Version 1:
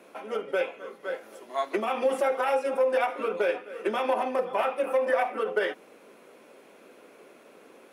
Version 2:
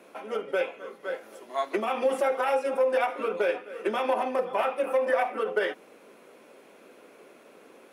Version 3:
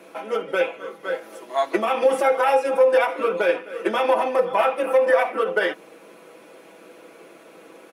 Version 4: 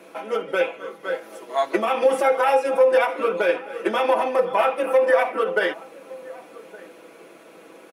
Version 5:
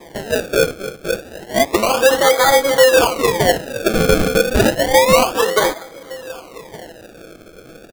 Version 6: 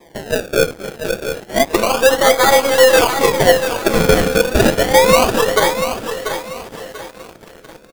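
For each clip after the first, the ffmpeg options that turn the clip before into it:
ffmpeg -i in.wav -af anull out.wav
ffmpeg -i in.wav -af "aecho=1:1:6.1:0.52,volume=5.5dB" out.wav
ffmpeg -i in.wav -filter_complex "[0:a]asplit=2[link_01][link_02];[link_02]adelay=1166,volume=-20dB,highshelf=frequency=4000:gain=-26.2[link_03];[link_01][link_03]amix=inputs=2:normalize=0" out.wav
ffmpeg -i in.wav -filter_complex "[0:a]acrusher=samples=31:mix=1:aa=0.000001:lfo=1:lforange=31:lforate=0.3,asplit=2[link_01][link_02];[link_02]asoftclip=type=hard:threshold=-15.5dB,volume=-6dB[link_03];[link_01][link_03]amix=inputs=2:normalize=0,volume=3dB" out.wav
ffmpeg -i in.wav -filter_complex "[0:a]aecho=1:1:689|1378|2067|2756:0.447|0.156|0.0547|0.0192,asplit=2[link_01][link_02];[link_02]acrusher=bits=4:mix=0:aa=0.000001,volume=-3dB[link_03];[link_01][link_03]amix=inputs=2:normalize=0,aeval=exprs='1.41*(cos(1*acos(clip(val(0)/1.41,-1,1)))-cos(1*PI/2))+0.0501*(cos(7*acos(clip(val(0)/1.41,-1,1)))-cos(7*PI/2))+0.0501*(cos(8*acos(clip(val(0)/1.41,-1,1)))-cos(8*PI/2))':channel_layout=same,volume=-4dB" out.wav

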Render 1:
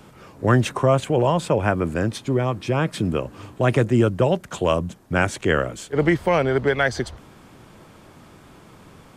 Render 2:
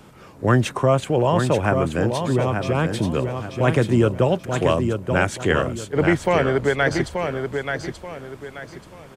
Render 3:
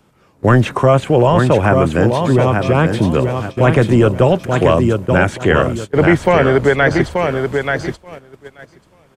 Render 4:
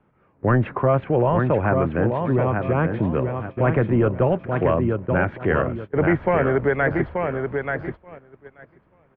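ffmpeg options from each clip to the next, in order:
ffmpeg -i in.wav -af "aecho=1:1:882|1764|2646|3528:0.501|0.16|0.0513|0.0164" out.wav
ffmpeg -i in.wav -filter_complex "[0:a]acrossover=split=3000[link_01][link_02];[link_02]acompressor=threshold=-42dB:ratio=4:attack=1:release=60[link_03];[link_01][link_03]amix=inputs=2:normalize=0,agate=range=-16dB:threshold=-31dB:ratio=16:detection=peak,apsyclip=11.5dB,volume=-3.5dB" out.wav
ffmpeg -i in.wav -af "lowpass=frequency=2200:width=0.5412,lowpass=frequency=2200:width=1.3066,volume=-7.5dB" out.wav

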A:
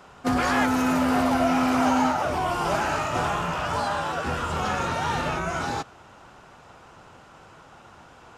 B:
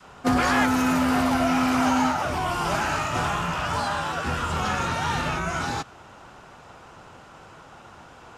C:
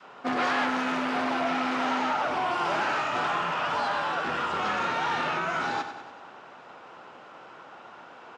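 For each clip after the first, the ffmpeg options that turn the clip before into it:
ffmpeg -i in.wav -af "adynamicequalizer=threshold=0.0178:dfrequency=520:dqfactor=0.81:tfrequency=520:tqfactor=0.81:attack=5:release=100:ratio=0.375:range=3:mode=cutabove:tftype=bell,volume=2.5dB" out.wav
ffmpeg -i in.wav -af "asoftclip=type=hard:threshold=-22.5dB,highpass=290,lowpass=3700,aecho=1:1:96|192|288|384|480|576:0.316|0.174|0.0957|0.0526|0.0289|0.0159" out.wav

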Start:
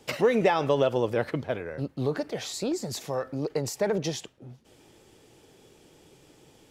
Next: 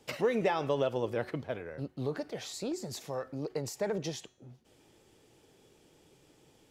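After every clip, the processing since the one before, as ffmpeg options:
ffmpeg -i in.wav -af "bandreject=frequency=369.9:width_type=h:width=4,bandreject=frequency=739.8:width_type=h:width=4,bandreject=frequency=1109.7:width_type=h:width=4,bandreject=frequency=1479.6:width_type=h:width=4,bandreject=frequency=1849.5:width_type=h:width=4,bandreject=frequency=2219.4:width_type=h:width=4,bandreject=frequency=2589.3:width_type=h:width=4,bandreject=frequency=2959.2:width_type=h:width=4,bandreject=frequency=3329.1:width_type=h:width=4,bandreject=frequency=3699:width_type=h:width=4,bandreject=frequency=4068.9:width_type=h:width=4,bandreject=frequency=4438.8:width_type=h:width=4,bandreject=frequency=4808.7:width_type=h:width=4,bandreject=frequency=5178.6:width_type=h:width=4,bandreject=frequency=5548.5:width_type=h:width=4,bandreject=frequency=5918.4:width_type=h:width=4,bandreject=frequency=6288.3:width_type=h:width=4,bandreject=frequency=6658.2:width_type=h:width=4,bandreject=frequency=7028.1:width_type=h:width=4,bandreject=frequency=7398:width_type=h:width=4,bandreject=frequency=7767.9:width_type=h:width=4,bandreject=frequency=8137.8:width_type=h:width=4,bandreject=frequency=8507.7:width_type=h:width=4,bandreject=frequency=8877.6:width_type=h:width=4,bandreject=frequency=9247.5:width_type=h:width=4,bandreject=frequency=9617.4:width_type=h:width=4,bandreject=frequency=9987.3:width_type=h:width=4,volume=-6.5dB" out.wav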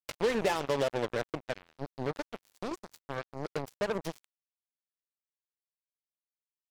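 ffmpeg -i in.wav -af "acrusher=bits=4:mix=0:aa=0.5" out.wav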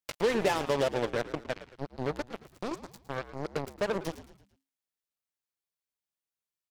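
ffmpeg -i in.wav -filter_complex "[0:a]asplit=5[link_01][link_02][link_03][link_04][link_05];[link_02]adelay=111,afreqshift=-68,volume=-14.5dB[link_06];[link_03]adelay=222,afreqshift=-136,volume=-21.4dB[link_07];[link_04]adelay=333,afreqshift=-204,volume=-28.4dB[link_08];[link_05]adelay=444,afreqshift=-272,volume=-35.3dB[link_09];[link_01][link_06][link_07][link_08][link_09]amix=inputs=5:normalize=0,volume=1.5dB" out.wav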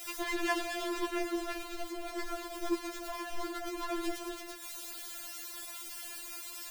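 ffmpeg -i in.wav -af "aeval=exprs='val(0)+0.5*0.0335*sgn(val(0))':channel_layout=same,afftfilt=real='re*4*eq(mod(b,16),0)':imag='im*4*eq(mod(b,16),0)':win_size=2048:overlap=0.75,volume=-2.5dB" out.wav

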